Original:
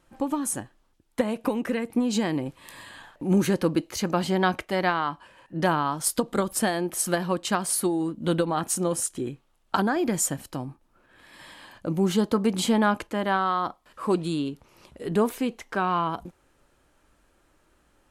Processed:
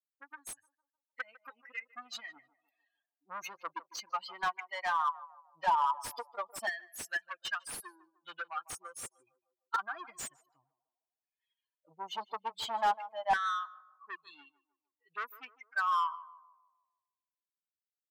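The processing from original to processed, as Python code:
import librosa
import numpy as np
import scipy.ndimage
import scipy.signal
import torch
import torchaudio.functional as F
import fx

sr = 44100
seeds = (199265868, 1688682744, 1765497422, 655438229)

y = fx.bin_expand(x, sr, power=3.0)
y = 10.0 ** (-31.0 / 20.0) * np.tanh(y / 10.0 ** (-31.0 / 20.0))
y = fx.echo_banded(y, sr, ms=152, feedback_pct=49, hz=560.0, wet_db=-15.0)
y = fx.filter_lfo_highpass(y, sr, shape='saw_down', hz=0.15, low_hz=820.0, high_hz=1700.0, q=4.4)
y = fx.slew_limit(y, sr, full_power_hz=71.0)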